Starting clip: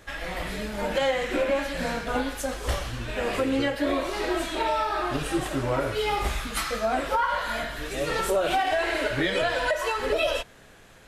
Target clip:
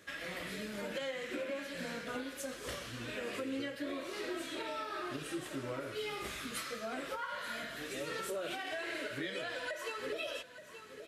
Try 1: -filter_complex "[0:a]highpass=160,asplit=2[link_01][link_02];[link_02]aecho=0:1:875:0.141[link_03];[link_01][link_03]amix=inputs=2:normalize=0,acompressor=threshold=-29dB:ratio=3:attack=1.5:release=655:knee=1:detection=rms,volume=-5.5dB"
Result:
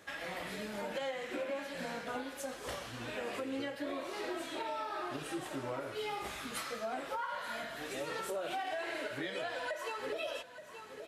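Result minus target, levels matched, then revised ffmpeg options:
1,000 Hz band +4.0 dB
-filter_complex "[0:a]highpass=160,equalizer=frequency=820:width=2.2:gain=-11.5,asplit=2[link_01][link_02];[link_02]aecho=0:1:875:0.141[link_03];[link_01][link_03]amix=inputs=2:normalize=0,acompressor=threshold=-29dB:ratio=3:attack=1.5:release=655:knee=1:detection=rms,volume=-5.5dB"

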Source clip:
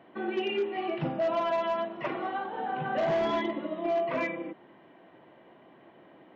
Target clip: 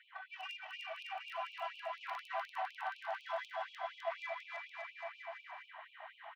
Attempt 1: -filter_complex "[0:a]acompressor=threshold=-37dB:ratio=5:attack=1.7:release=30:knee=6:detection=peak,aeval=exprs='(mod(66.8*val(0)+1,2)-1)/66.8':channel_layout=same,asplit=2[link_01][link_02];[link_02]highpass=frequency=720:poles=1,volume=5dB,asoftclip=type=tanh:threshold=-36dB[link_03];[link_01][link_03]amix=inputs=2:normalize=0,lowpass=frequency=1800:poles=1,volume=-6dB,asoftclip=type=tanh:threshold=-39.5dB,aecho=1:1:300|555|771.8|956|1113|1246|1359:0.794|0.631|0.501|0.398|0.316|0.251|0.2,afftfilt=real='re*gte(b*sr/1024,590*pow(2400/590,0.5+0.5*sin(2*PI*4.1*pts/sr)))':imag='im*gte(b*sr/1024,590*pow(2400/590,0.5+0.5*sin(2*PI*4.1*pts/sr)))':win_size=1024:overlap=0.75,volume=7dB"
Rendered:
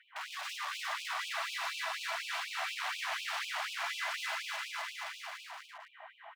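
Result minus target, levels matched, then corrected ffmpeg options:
downward compressor: peak gain reduction −6 dB
-filter_complex "[0:a]acompressor=threshold=-44.5dB:ratio=5:attack=1.7:release=30:knee=6:detection=peak,aeval=exprs='(mod(66.8*val(0)+1,2)-1)/66.8':channel_layout=same,asplit=2[link_01][link_02];[link_02]highpass=frequency=720:poles=1,volume=5dB,asoftclip=type=tanh:threshold=-36dB[link_03];[link_01][link_03]amix=inputs=2:normalize=0,lowpass=frequency=1800:poles=1,volume=-6dB,asoftclip=type=tanh:threshold=-39.5dB,aecho=1:1:300|555|771.8|956|1113|1246|1359:0.794|0.631|0.501|0.398|0.316|0.251|0.2,afftfilt=real='re*gte(b*sr/1024,590*pow(2400/590,0.5+0.5*sin(2*PI*4.1*pts/sr)))':imag='im*gte(b*sr/1024,590*pow(2400/590,0.5+0.5*sin(2*PI*4.1*pts/sr)))':win_size=1024:overlap=0.75,volume=7dB"

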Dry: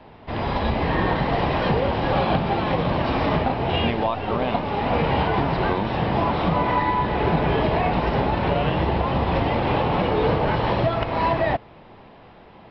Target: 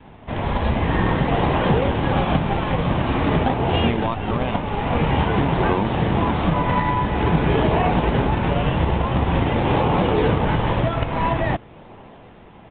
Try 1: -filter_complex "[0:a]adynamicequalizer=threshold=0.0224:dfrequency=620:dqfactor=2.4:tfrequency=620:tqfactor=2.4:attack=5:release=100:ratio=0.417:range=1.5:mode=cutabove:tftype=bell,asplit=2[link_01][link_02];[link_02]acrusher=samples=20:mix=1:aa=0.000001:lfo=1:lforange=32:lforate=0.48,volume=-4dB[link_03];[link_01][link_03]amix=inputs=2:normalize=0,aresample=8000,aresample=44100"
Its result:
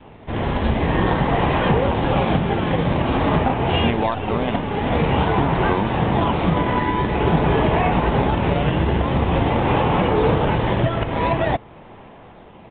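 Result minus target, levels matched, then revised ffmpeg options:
sample-and-hold swept by an LFO: distortion −7 dB
-filter_complex "[0:a]adynamicequalizer=threshold=0.0224:dfrequency=620:dqfactor=2.4:tfrequency=620:tqfactor=2.4:attack=5:release=100:ratio=0.417:range=1.5:mode=cutabove:tftype=bell,asplit=2[link_01][link_02];[link_02]acrusher=samples=60:mix=1:aa=0.000001:lfo=1:lforange=96:lforate=0.48,volume=-4dB[link_03];[link_01][link_03]amix=inputs=2:normalize=0,aresample=8000,aresample=44100"

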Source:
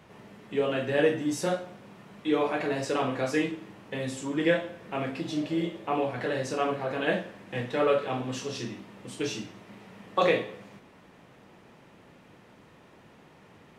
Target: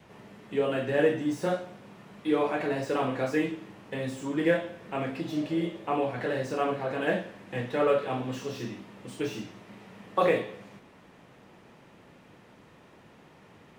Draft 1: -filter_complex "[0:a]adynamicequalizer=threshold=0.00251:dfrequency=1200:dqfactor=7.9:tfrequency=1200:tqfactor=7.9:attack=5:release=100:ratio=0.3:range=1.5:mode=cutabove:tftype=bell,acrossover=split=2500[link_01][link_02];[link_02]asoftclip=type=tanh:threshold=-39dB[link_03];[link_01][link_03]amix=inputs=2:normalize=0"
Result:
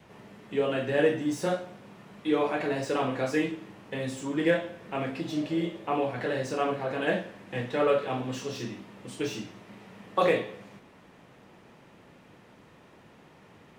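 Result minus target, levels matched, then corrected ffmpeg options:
soft clipping: distortion −6 dB
-filter_complex "[0:a]adynamicequalizer=threshold=0.00251:dfrequency=1200:dqfactor=7.9:tfrequency=1200:tqfactor=7.9:attack=5:release=100:ratio=0.3:range=1.5:mode=cutabove:tftype=bell,acrossover=split=2500[link_01][link_02];[link_02]asoftclip=type=tanh:threshold=-47dB[link_03];[link_01][link_03]amix=inputs=2:normalize=0"

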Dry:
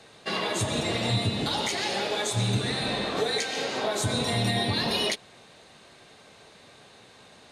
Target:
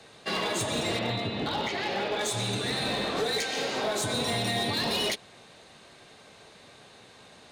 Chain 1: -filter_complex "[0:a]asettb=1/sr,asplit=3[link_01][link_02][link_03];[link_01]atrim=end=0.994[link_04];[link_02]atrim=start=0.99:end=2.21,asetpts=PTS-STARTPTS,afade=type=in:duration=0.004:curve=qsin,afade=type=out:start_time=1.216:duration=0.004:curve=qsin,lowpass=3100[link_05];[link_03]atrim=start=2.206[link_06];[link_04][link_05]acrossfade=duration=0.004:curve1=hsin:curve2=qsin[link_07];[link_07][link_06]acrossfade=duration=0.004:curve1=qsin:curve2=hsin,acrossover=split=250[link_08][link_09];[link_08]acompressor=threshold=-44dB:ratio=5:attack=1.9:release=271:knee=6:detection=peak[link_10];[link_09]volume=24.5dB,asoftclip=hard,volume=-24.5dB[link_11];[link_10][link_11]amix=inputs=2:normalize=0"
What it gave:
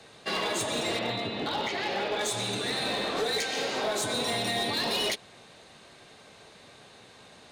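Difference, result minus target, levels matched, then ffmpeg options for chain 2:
downward compressor: peak gain reduction +8.5 dB
-filter_complex "[0:a]asettb=1/sr,asplit=3[link_01][link_02][link_03];[link_01]atrim=end=0.994[link_04];[link_02]atrim=start=0.99:end=2.21,asetpts=PTS-STARTPTS,afade=type=in:duration=0.004:curve=qsin,afade=type=out:start_time=1.216:duration=0.004:curve=qsin,lowpass=3100[link_05];[link_03]atrim=start=2.206[link_06];[link_04][link_05]acrossfade=duration=0.004:curve1=hsin:curve2=qsin[link_07];[link_07][link_06]acrossfade=duration=0.004:curve1=qsin:curve2=hsin,acrossover=split=250[link_08][link_09];[link_08]acompressor=threshold=-33.5dB:ratio=5:attack=1.9:release=271:knee=6:detection=peak[link_10];[link_09]volume=24.5dB,asoftclip=hard,volume=-24.5dB[link_11];[link_10][link_11]amix=inputs=2:normalize=0"

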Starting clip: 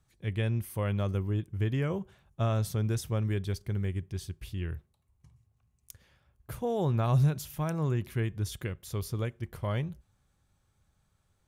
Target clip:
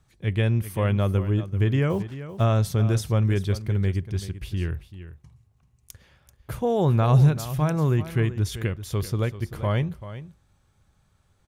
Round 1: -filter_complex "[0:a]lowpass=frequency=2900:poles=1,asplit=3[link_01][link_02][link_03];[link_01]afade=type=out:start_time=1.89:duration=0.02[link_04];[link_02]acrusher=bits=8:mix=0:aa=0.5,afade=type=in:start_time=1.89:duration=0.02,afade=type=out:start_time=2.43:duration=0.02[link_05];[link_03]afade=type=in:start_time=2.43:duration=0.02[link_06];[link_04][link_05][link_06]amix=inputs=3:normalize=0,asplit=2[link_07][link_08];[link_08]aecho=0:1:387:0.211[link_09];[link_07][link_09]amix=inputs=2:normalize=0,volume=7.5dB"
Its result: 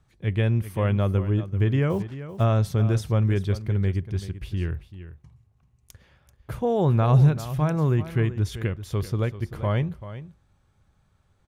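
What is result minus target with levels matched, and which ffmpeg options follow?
8,000 Hz band −5.5 dB
-filter_complex "[0:a]lowpass=frequency=7300:poles=1,asplit=3[link_01][link_02][link_03];[link_01]afade=type=out:start_time=1.89:duration=0.02[link_04];[link_02]acrusher=bits=8:mix=0:aa=0.5,afade=type=in:start_time=1.89:duration=0.02,afade=type=out:start_time=2.43:duration=0.02[link_05];[link_03]afade=type=in:start_time=2.43:duration=0.02[link_06];[link_04][link_05][link_06]amix=inputs=3:normalize=0,asplit=2[link_07][link_08];[link_08]aecho=0:1:387:0.211[link_09];[link_07][link_09]amix=inputs=2:normalize=0,volume=7.5dB"

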